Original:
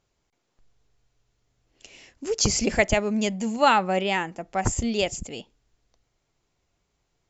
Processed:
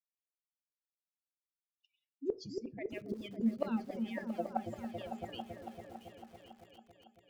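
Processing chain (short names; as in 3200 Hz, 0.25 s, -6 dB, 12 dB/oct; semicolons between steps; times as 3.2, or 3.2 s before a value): per-bin expansion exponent 3; elliptic band-pass 100–4700 Hz, stop band 40 dB; high shelf 3100 Hz -4 dB; notches 60/120/180/240/300/360/420/480 Hz; harmonic-percussive split percussive +7 dB; reverse; compressor 16:1, threshold -32 dBFS, peak gain reduction 20.5 dB; reverse; flipped gate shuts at -35 dBFS, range -28 dB; repeats that get brighter 0.278 s, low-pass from 400 Hz, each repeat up 1 oct, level -3 dB; on a send at -14 dB: reverb RT60 0.30 s, pre-delay 4 ms; on the sum: lo-fi delay 0.678 s, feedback 35%, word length 11-bit, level -13 dB; gain +15 dB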